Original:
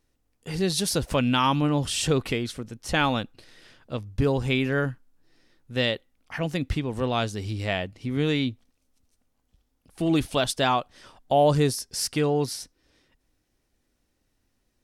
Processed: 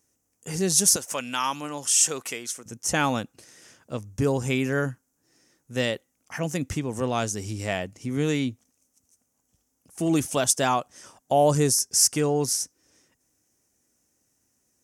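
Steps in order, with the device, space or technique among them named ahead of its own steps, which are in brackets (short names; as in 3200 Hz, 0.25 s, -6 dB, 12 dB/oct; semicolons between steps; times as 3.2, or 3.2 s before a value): budget condenser microphone (HPF 100 Hz 12 dB/oct; resonant high shelf 5100 Hz +8 dB, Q 3); 0.96–2.66 HPF 1100 Hz 6 dB/oct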